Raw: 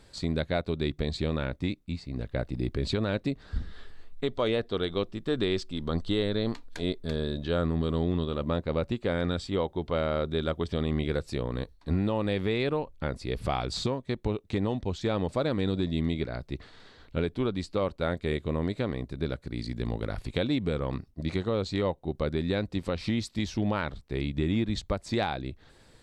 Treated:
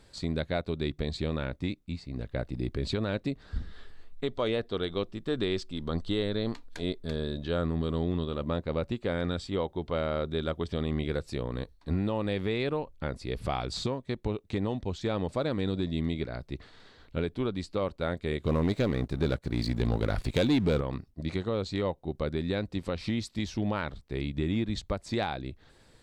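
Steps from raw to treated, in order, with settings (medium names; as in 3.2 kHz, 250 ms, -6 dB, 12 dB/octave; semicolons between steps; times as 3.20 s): 18.43–20.81 s: waveshaping leveller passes 2; trim -2 dB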